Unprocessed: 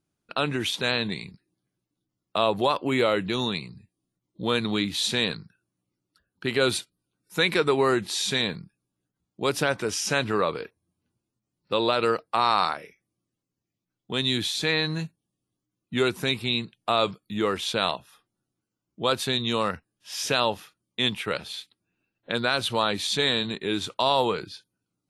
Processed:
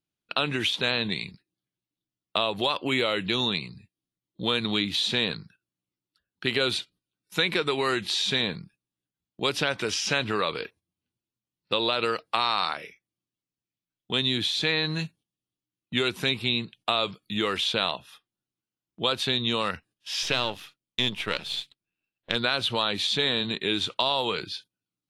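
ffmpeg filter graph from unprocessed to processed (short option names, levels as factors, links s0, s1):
-filter_complex "[0:a]asettb=1/sr,asplit=3[s0][s1][s2];[s0]atrim=end=20.234[s3];[s1]atrim=start=20.23:end=22.36,asetpts=PTS-STARTPTS,afade=t=in:d=0.004:c=qsin,afade=t=out:st=2.126:d=0.004:c=qsin,aeval=exprs='if(lt(val(0),0),0.447*val(0),val(0))':c=same,bandreject=f=138.6:t=h:w=4,bandreject=f=277.2:t=h:w=4[s4];[s2]atrim=start=22.356[s5];[s3][s4]acrossfade=d=0.004:c1=hsin:c2=qsin[s6];[s6][s5]acrossfade=d=0.004:c1=qsin:c2=hsin,agate=range=0.282:threshold=0.00224:ratio=16:detection=peak,equalizer=f=3200:t=o:w=1.4:g=9.5,acrossover=split=1500|6200[s7][s8][s9];[s7]acompressor=threshold=0.0562:ratio=4[s10];[s8]acompressor=threshold=0.0501:ratio=4[s11];[s9]acompressor=threshold=0.00501:ratio=4[s12];[s10][s11][s12]amix=inputs=3:normalize=0"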